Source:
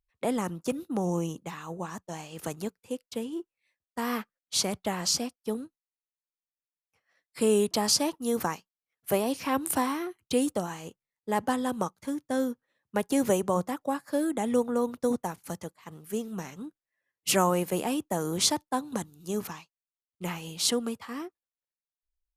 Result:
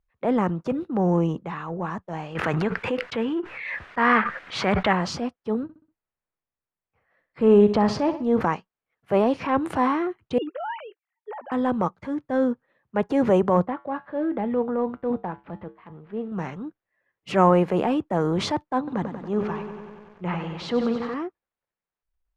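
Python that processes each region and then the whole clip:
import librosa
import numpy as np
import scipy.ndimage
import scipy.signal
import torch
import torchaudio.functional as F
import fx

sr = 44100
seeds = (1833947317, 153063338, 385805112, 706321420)

y = fx.chain(x, sr, fx.peak_eq(hz=1800.0, db=12.5, octaves=1.8),
    fx.pre_swell(db_per_s=33.0), at=(2.35, 4.93))
y = fx.chain(y, sr, fx.lowpass(hz=3200.0, slope=6),
    fx.low_shelf(hz=98.0, db=9.5),
    fx.echo_feedback(ms=63, feedback_pct=43, wet_db=-14), at=(5.63, 8.41))
y = fx.chain(y, sr, fx.sine_speech(),
    fx.highpass(hz=700.0, slope=12),
    fx.over_compress(threshold_db=-40.0, ratio=-1.0), at=(10.38, 11.52))
y = fx.chain(y, sr, fx.median_filter(points=9),
    fx.lowpass(hz=4100.0, slope=24),
    fx.comb_fb(f0_hz=66.0, decay_s=0.28, harmonics='odd', damping=0.0, mix_pct=50), at=(13.66, 16.32))
y = fx.chain(y, sr, fx.air_absorb(metres=90.0),
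    fx.echo_crushed(ms=94, feedback_pct=80, bits=9, wet_db=-10.5), at=(18.78, 21.14))
y = scipy.signal.sosfilt(scipy.signal.butter(2, 1800.0, 'lowpass', fs=sr, output='sos'), y)
y = fx.peak_eq(y, sr, hz=280.0, db=-3.5, octaves=0.27)
y = fx.transient(y, sr, attack_db=-6, sustain_db=3)
y = y * librosa.db_to_amplitude(8.5)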